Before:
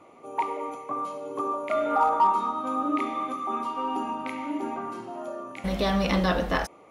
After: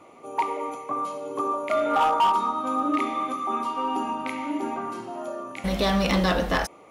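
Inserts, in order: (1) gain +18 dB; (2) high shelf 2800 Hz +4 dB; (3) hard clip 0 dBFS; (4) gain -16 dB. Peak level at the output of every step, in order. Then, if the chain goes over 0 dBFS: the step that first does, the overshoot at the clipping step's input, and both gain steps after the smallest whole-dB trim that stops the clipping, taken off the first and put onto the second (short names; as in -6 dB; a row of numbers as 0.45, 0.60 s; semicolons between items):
+7.0, +8.0, 0.0, -16.0 dBFS; step 1, 8.0 dB; step 1 +10 dB, step 4 -8 dB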